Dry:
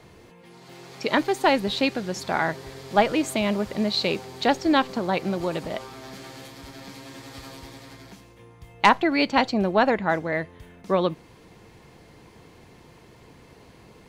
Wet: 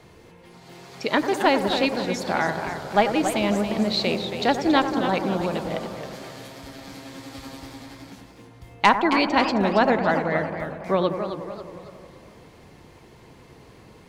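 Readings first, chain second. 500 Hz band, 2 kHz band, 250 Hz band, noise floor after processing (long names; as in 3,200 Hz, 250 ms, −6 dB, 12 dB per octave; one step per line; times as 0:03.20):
+1.5 dB, +1.0 dB, +1.5 dB, −50 dBFS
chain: bucket-brigade delay 93 ms, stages 1,024, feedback 75%, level −10.5 dB
feedback echo with a swinging delay time 272 ms, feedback 44%, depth 182 cents, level −9 dB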